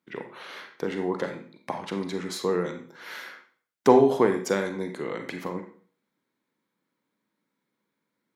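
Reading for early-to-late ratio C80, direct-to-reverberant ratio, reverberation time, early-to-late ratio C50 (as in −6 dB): 11.0 dB, 5.0 dB, 0.45 s, 7.5 dB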